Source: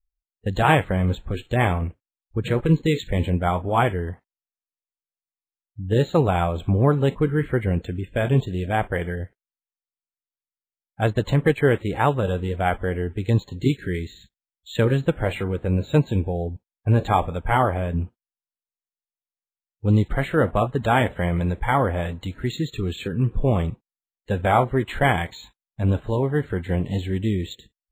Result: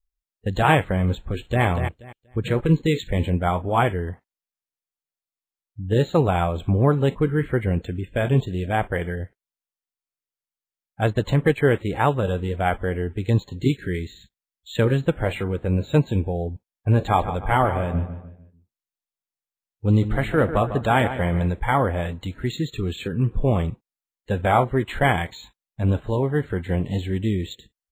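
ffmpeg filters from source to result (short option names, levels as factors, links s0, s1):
-filter_complex "[0:a]asplit=2[s0][s1];[s1]afade=t=in:st=1.17:d=0.01,afade=t=out:st=1.64:d=0.01,aecho=0:1:240|480|720:0.398107|0.0796214|0.0159243[s2];[s0][s2]amix=inputs=2:normalize=0,asettb=1/sr,asplit=3[s3][s4][s5];[s3]atrim=end=17.014[s6];[s4]atrim=start=17.01:end=21.48,asetpts=PTS-STARTPTS,afade=t=in:d=0.004:c=qsin,afade=t=out:st=4.466:d=0.004:c=qsin,asplit=2[s7][s8];[s8]adelay=149,lowpass=f=3500:p=1,volume=0.282,asplit=2[s9][s10];[s10]adelay=149,lowpass=f=3500:p=1,volume=0.41,asplit=2[s11][s12];[s12]adelay=149,lowpass=f=3500:p=1,volume=0.41,asplit=2[s13][s14];[s14]adelay=149,lowpass=f=3500:p=1,volume=0.41[s15];[s7][s9][s11][s13][s15]amix=inputs=5:normalize=0,atrim=end_sample=197127[s16];[s5]atrim=start=21.476[s17];[s6][s16]acrossfade=d=0.004:c1=hsin:c2=qsin[s18];[s18][s17]acrossfade=d=0.004:c1=qsin:c2=hsin"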